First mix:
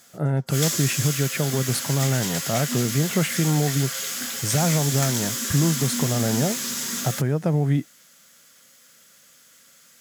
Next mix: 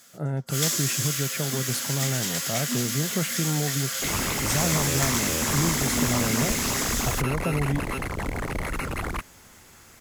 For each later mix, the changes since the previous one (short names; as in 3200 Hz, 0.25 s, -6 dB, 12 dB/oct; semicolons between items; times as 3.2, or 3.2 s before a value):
speech -5.5 dB; second sound: unmuted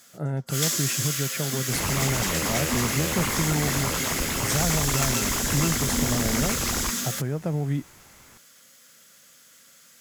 second sound: entry -2.30 s